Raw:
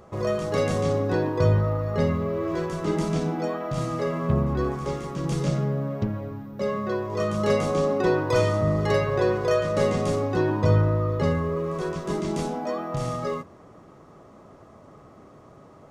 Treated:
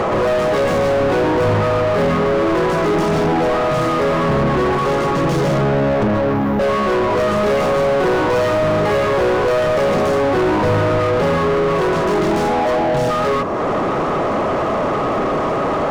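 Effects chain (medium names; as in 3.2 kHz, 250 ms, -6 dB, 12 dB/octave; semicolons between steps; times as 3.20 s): upward compressor, threshold -29 dBFS; spectral selection erased 12.75–13.10 s, 920–2400 Hz; overdrive pedal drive 42 dB, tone 1 kHz, clips at -8 dBFS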